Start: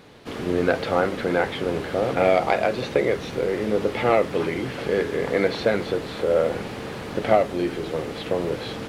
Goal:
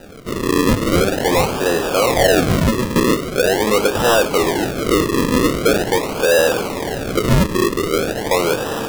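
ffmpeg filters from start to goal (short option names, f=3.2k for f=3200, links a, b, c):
-filter_complex "[0:a]asplit=2[a][b];[b]highpass=f=720:p=1,volume=23dB,asoftclip=type=tanh:threshold=-4dB[c];[a][c]amix=inputs=2:normalize=0,lowpass=f=1.2k:p=1,volume=-6dB,acrusher=samples=40:mix=1:aa=0.000001:lfo=1:lforange=40:lforate=0.43"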